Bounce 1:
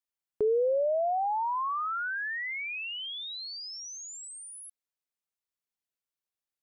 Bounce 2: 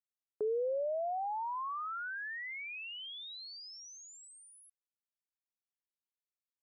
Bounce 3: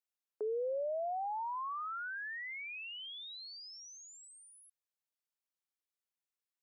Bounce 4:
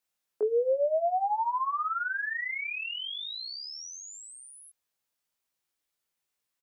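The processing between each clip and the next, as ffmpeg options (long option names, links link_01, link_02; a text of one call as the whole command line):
ffmpeg -i in.wav -af "agate=range=-33dB:threshold=-40dB:ratio=3:detection=peak,volume=-7.5dB" out.wav
ffmpeg -i in.wav -af "highpass=380,volume=-1dB" out.wav
ffmpeg -i in.wav -filter_complex "[0:a]asplit=2[link_01][link_02];[link_02]adelay=19,volume=-3.5dB[link_03];[link_01][link_03]amix=inputs=2:normalize=0,volume=8dB" out.wav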